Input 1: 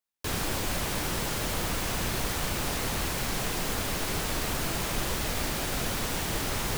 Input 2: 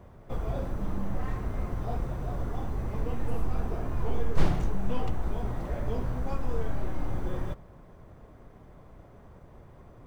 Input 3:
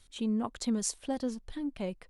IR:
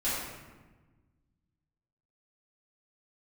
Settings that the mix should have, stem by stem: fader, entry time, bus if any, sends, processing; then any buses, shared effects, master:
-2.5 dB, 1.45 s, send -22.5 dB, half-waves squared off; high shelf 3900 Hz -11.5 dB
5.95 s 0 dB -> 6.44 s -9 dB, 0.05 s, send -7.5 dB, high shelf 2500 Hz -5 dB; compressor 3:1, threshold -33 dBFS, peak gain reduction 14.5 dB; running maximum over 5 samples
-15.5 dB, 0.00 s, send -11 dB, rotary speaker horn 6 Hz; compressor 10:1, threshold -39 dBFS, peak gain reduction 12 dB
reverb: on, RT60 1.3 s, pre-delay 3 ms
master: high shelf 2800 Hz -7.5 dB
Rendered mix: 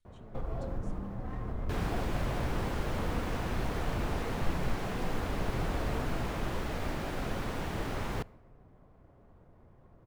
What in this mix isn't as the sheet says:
stem 1: missing half-waves squared off; stem 2: missing high shelf 2500 Hz -5 dB; reverb return -8.5 dB

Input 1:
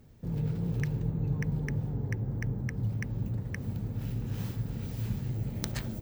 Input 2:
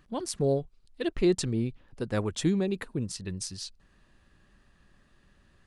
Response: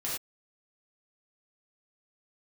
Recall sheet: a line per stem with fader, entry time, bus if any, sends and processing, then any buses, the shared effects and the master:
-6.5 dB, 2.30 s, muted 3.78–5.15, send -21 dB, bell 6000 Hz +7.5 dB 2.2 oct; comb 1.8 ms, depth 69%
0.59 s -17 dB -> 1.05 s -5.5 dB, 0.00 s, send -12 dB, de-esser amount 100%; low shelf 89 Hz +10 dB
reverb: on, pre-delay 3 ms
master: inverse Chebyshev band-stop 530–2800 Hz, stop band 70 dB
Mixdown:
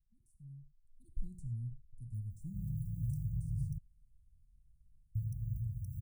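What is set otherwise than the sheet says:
stem 1: send off; stem 2 -17.0 dB -> -23.0 dB

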